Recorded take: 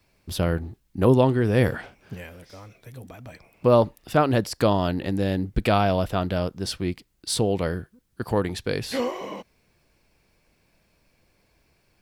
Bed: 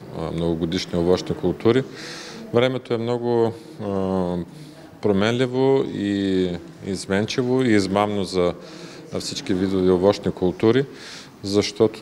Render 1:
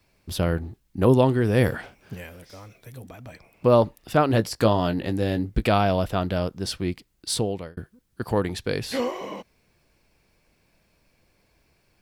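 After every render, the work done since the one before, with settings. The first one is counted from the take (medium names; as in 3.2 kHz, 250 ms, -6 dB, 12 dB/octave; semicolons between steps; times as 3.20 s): 1.10–3.02 s: treble shelf 7.7 kHz +5 dB; 4.28–5.63 s: doubling 18 ms -9.5 dB; 7.32–7.77 s: fade out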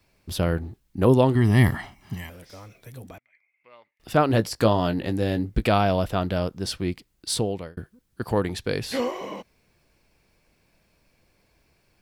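1.35–2.30 s: comb 1 ms, depth 94%; 3.18–4.00 s: band-pass filter 2.1 kHz, Q 18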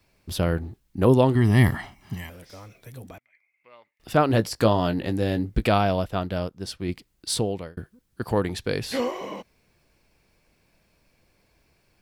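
5.74–6.89 s: upward expansion, over -38 dBFS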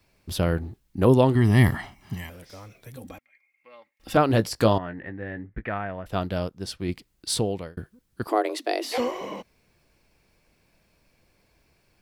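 2.96–4.17 s: comb 3.7 ms, depth 67%; 4.78–6.06 s: four-pole ladder low-pass 2 kHz, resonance 70%; 8.27–8.98 s: frequency shift +220 Hz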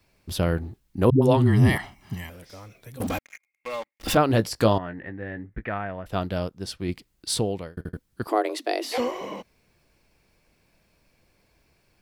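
1.10–1.78 s: phase dispersion highs, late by 120 ms, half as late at 300 Hz; 3.00–4.15 s: waveshaping leveller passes 5; 7.73 s: stutter in place 0.08 s, 3 plays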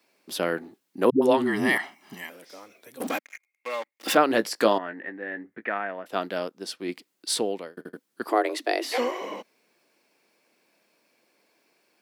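high-pass 250 Hz 24 dB/octave; dynamic bell 1.8 kHz, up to +5 dB, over -44 dBFS, Q 1.7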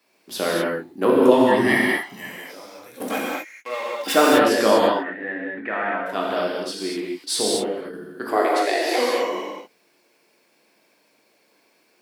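gated-style reverb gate 270 ms flat, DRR -4.5 dB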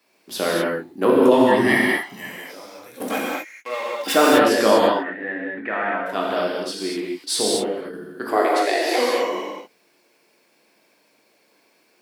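trim +1 dB; peak limiter -3 dBFS, peak gain reduction 2.5 dB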